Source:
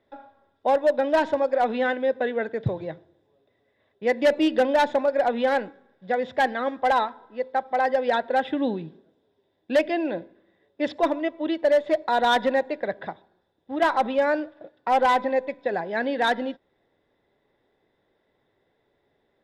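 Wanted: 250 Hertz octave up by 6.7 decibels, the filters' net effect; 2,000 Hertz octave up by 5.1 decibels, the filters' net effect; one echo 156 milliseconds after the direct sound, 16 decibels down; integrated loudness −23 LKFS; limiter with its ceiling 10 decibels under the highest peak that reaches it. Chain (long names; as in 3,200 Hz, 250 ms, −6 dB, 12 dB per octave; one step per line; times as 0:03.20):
parametric band 250 Hz +8 dB
parametric band 2,000 Hz +6.5 dB
brickwall limiter −18 dBFS
single-tap delay 156 ms −16 dB
level +4 dB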